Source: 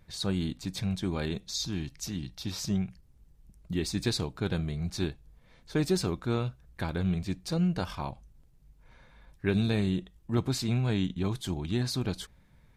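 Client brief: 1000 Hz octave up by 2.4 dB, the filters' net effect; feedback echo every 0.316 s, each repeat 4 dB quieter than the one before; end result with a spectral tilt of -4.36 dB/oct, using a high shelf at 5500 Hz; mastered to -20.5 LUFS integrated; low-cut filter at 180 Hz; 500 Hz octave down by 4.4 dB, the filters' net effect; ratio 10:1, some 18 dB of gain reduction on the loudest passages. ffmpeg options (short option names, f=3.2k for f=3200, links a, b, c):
-af "highpass=180,equalizer=f=500:t=o:g=-7,equalizer=f=1k:t=o:g=5.5,highshelf=f=5.5k:g=-7.5,acompressor=threshold=-45dB:ratio=10,aecho=1:1:316|632|948|1264|1580|1896|2212|2528|2844:0.631|0.398|0.25|0.158|0.0994|0.0626|0.0394|0.0249|0.0157,volume=27.5dB"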